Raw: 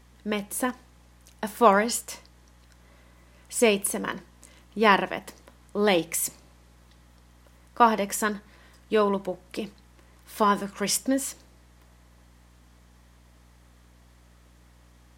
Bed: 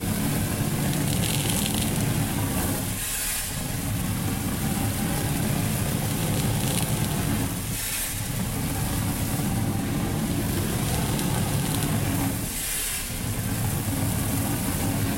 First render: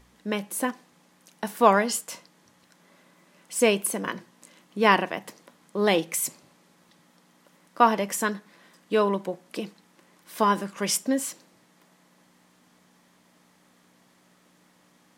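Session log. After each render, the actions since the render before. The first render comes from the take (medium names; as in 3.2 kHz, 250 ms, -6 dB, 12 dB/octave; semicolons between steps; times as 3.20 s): de-hum 60 Hz, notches 2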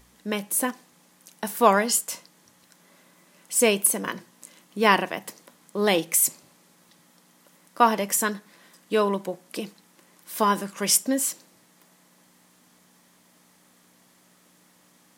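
treble shelf 6.5 kHz +10.5 dB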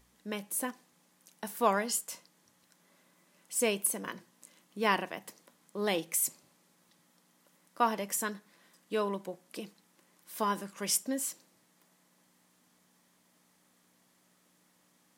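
trim -9.5 dB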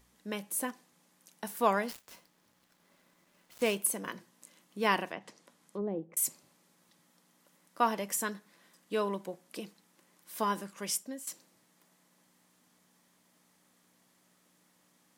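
1.83–3.80 s: dead-time distortion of 0.071 ms; 5.11–6.17 s: low-pass that closes with the level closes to 410 Hz, closed at -31 dBFS; 10.36–11.27 s: fade out equal-power, to -13.5 dB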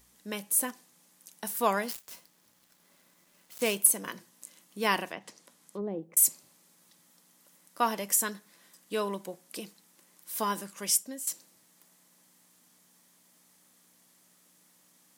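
treble shelf 4.5 kHz +10 dB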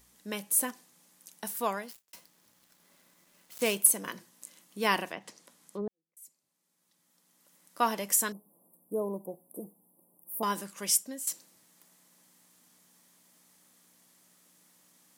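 1.35–2.13 s: fade out; 5.88–7.82 s: fade in quadratic; 8.32–10.43 s: inverse Chebyshev band-stop 1.7–6 kHz, stop band 50 dB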